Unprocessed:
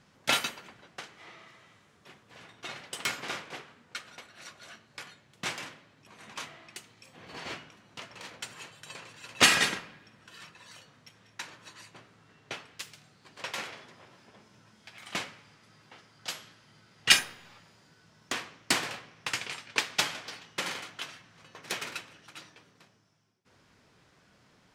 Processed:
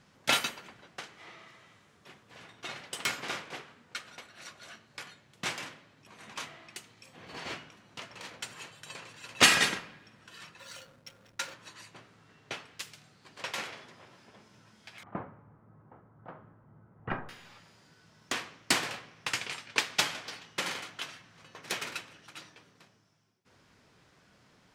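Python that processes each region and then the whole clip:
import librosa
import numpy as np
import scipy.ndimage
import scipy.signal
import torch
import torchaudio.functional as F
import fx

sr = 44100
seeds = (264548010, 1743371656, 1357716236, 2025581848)

y = fx.chain(x, sr, fx.high_shelf(hz=3100.0, db=8.0),
    fx.small_body(hz=(540.0, 1400.0), ring_ms=90, db=14),
    fx.backlash(play_db=-51.0), at=(10.59, 11.54))
y = fx.chain(y, sr, fx.lowpass(hz=1200.0, slope=24),
    fx.low_shelf(hz=140.0, db=10.0), at=(15.03, 17.29))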